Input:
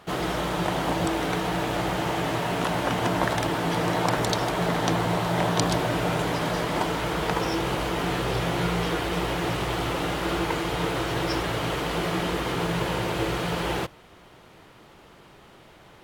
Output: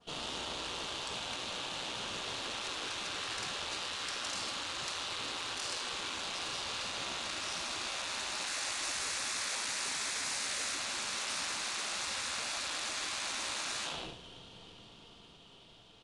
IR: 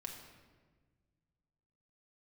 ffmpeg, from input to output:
-filter_complex "[0:a]highshelf=frequency=2500:width_type=q:width=3:gain=7[link_01];[1:a]atrim=start_sample=2205,afade=type=out:start_time=0.35:duration=0.01,atrim=end_sample=15876[link_02];[link_01][link_02]afir=irnorm=-1:irlink=0,dynaudnorm=framelen=530:gausssize=9:maxgain=10.5dB,lowpass=7000,asettb=1/sr,asplit=3[link_03][link_04][link_05];[link_03]atrim=end=8.474[link_06];[link_04]atrim=start=8.47:end=10.75,asetpts=PTS-STARTPTS,afade=type=in:duration=0.004:curve=qsin,afade=type=out:start_time=2.276:duration=0.004:curve=qsin,acontrast=46[link_07];[link_05]atrim=start=10.746[link_08];[link_06][link_07]acrossfade=duration=0.004:curve1=hsin:curve2=qsin[link_09];[link_09][link_08]acrossfade=duration=0.004:curve1=qsin:curve2=hsin,aeval=exprs='(tanh(15.8*val(0)+0.8)-tanh(0.8))/15.8':channel_layout=same,adynamicequalizer=threshold=0.0282:dfrequency=3400:dqfactor=1.3:tfrequency=3400:tqfactor=1.3:attack=5:release=100:ratio=0.375:range=1.5:mode=cutabove:tftype=bell,afftfilt=real='re*lt(hypot(re,im),0.0631)':imag='im*lt(hypot(re,im),0.0631)':win_size=1024:overlap=0.75,aecho=1:1:106|212|318|424|530:0.126|0.0692|0.0381|0.0209|0.0115,volume=-3.5dB" -ar 22050 -c:a adpcm_ima_wav

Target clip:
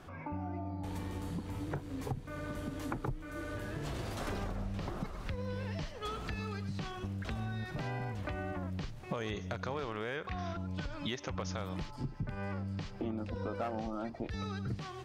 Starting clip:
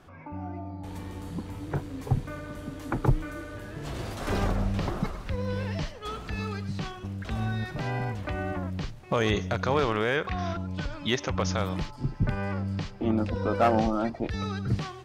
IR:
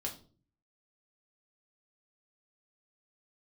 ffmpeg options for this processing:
-af "acompressor=threshold=-37dB:ratio=6,volume=1.5dB"

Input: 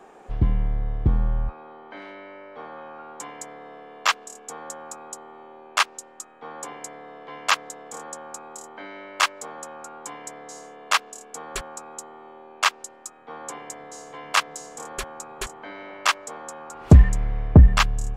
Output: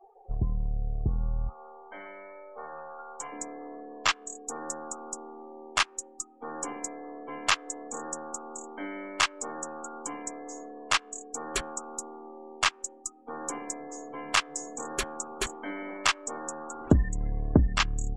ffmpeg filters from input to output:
ffmpeg -i in.wav -af "aeval=exprs='if(lt(val(0),0),0.708*val(0),val(0))':channel_layout=same,acompressor=threshold=-26dB:ratio=2.5,asetnsamples=nb_out_samples=441:pad=0,asendcmd='3.32 equalizer g 9',equalizer=frequency=280:width_type=o:width=0.75:gain=-6,afftdn=noise_reduction=35:noise_floor=-42,adynamicequalizer=threshold=0.00708:dfrequency=1500:dqfactor=0.7:tfrequency=1500:tqfactor=0.7:attack=5:release=100:ratio=0.375:range=3:mode=boostabove:tftype=highshelf" out.wav

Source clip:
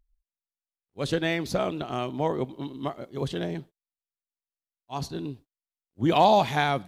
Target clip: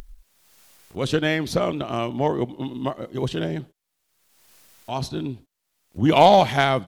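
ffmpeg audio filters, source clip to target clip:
ffmpeg -i in.wav -af "asetrate=41625,aresample=44100,atempo=1.05946,aeval=exprs='0.376*(cos(1*acos(clip(val(0)/0.376,-1,1)))-cos(1*PI/2))+0.0335*(cos(3*acos(clip(val(0)/0.376,-1,1)))-cos(3*PI/2))':channel_layout=same,acompressor=mode=upward:threshold=-31dB:ratio=2.5,volume=7dB" out.wav

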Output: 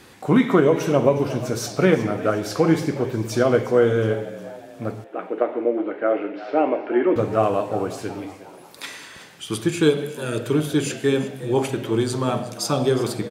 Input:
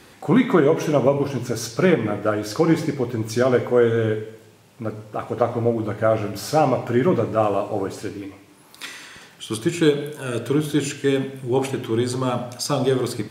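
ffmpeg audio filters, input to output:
ffmpeg -i in.wav -filter_complex "[0:a]asettb=1/sr,asplit=3[link_01][link_02][link_03];[link_01]atrim=end=5.044[link_04];[link_02]atrim=start=5.04:end=7.16,asetpts=PTS-STARTPTS,afade=type=in:duration=0.004:curve=qsin,afade=type=out:start_time=2.116:duration=0.004:curve=qsin,highpass=frequency=300:width=0.5412,highpass=frequency=300:width=1.3066,equalizer=frequency=310:width_type=q:width=4:gain=6,equalizer=frequency=720:width_type=q:width=4:gain=-4,equalizer=frequency=1100:width_type=q:width=4:gain=-7,lowpass=frequency=2700:width=0.5412,lowpass=frequency=2700:width=1.3066[link_05];[link_03]atrim=start=7.156[link_06];[link_04][link_05]acrossfade=duration=0.004:curve1=hsin:curve2=qsin[link_07];[link_07][link_06]acrossfade=duration=0.004:curve1=qsin:curve2=hsin,asplit=5[link_08][link_09][link_10][link_11][link_12];[link_09]adelay=361,afreqshift=75,volume=-16.5dB[link_13];[link_10]adelay=722,afreqshift=150,volume=-23.1dB[link_14];[link_11]adelay=1083,afreqshift=225,volume=-29.6dB[link_15];[link_12]adelay=1444,afreqshift=300,volume=-36.2dB[link_16];[link_08][link_13][link_14][link_15][link_16]amix=inputs=5:normalize=0" out.wav

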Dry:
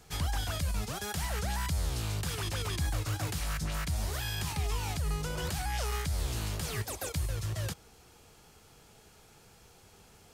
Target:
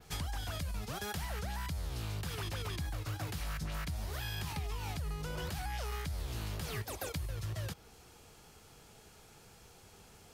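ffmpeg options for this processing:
ffmpeg -i in.wav -af "adynamicequalizer=threshold=0.002:dfrequency=7900:dqfactor=1.1:tfrequency=7900:tqfactor=1.1:attack=5:release=100:ratio=0.375:range=3:mode=cutabove:tftype=bell,acompressor=threshold=-35dB:ratio=6" out.wav

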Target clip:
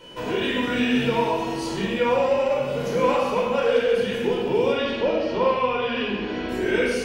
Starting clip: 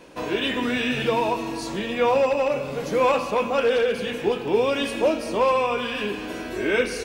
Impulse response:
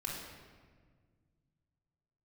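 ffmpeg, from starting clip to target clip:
-filter_complex "[0:a]asettb=1/sr,asplit=3[link_01][link_02][link_03];[link_01]atrim=end=4.724[link_04];[link_02]atrim=start=4.72:end=6.49,asetpts=PTS-STARTPTS,afade=type=in:duration=0.004:curve=qsin,afade=type=out:start_time=1.766:duration=0.004:curve=qsin,lowpass=frequency=4700:width=0.5412,lowpass=frequency=4700:width=1.3066[link_05];[link_03]atrim=start=6.486[link_06];[link_04][link_05]acrossfade=duration=0.004:curve1=hsin:curve2=qsin[link_07];[link_07][link_06]acrossfade=duration=0.004:curve1=qsin:curve2=hsin,asplit=2[link_08][link_09];[link_09]acompressor=threshold=-28dB:ratio=6,volume=0dB[link_10];[link_08][link_10]amix=inputs=2:normalize=0,aeval=exprs='val(0)+0.00794*sin(2*PI*3000*n/s)':channel_layout=same[link_11];[1:a]atrim=start_sample=2205,afade=type=out:start_time=0.31:duration=0.01,atrim=end_sample=14112,asetrate=52920,aresample=44100[link_12];[link_11][link_12]afir=irnorm=-1:irlink=0,volume=-3dB"

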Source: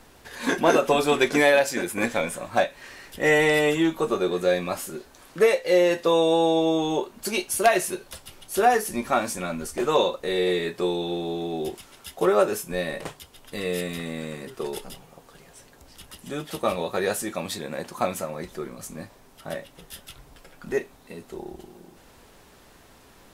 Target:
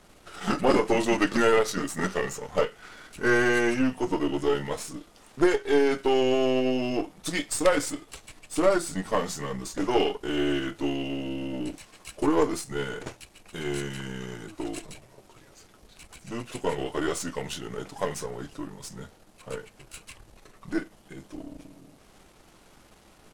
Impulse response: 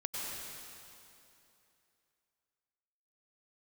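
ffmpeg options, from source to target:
-af "aeval=exprs='if(lt(val(0),0),0.447*val(0),val(0))':channel_layout=same,asetrate=35002,aresample=44100,atempo=1.25992"

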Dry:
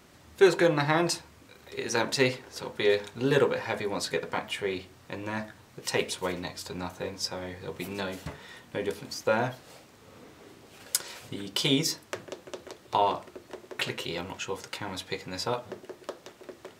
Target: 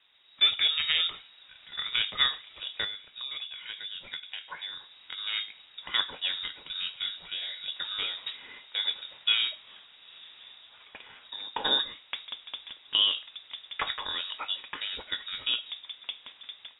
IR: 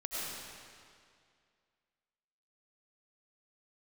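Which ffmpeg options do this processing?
-filter_complex "[0:a]dynaudnorm=framelen=130:gausssize=5:maxgain=9.5dB,lowpass=frequency=3300:width_type=q:width=0.5098,lowpass=frequency=3300:width_type=q:width=0.6013,lowpass=frequency=3300:width_type=q:width=0.9,lowpass=frequency=3300:width_type=q:width=2.563,afreqshift=-3900,asettb=1/sr,asplit=3[link_01][link_02][link_03];[link_01]atrim=end=2.844[link_04];[link_02]atrim=start=2.84:end=5.18,asetpts=PTS-STARTPTS,afade=type=in:duration=0.004:curve=qsin,afade=type=out:start_time=2.336:duration=0.004:curve=qsin,acompressor=threshold=-28dB:ratio=6[link_05];[link_03]atrim=start=5.176[link_06];[link_04][link_05]acrossfade=duration=0.004:curve1=hsin:curve2=qsin[link_07];[link_07][link_06]acrossfade=duration=0.004:curve1=qsin:curve2=hsin,volume=-8.5dB"

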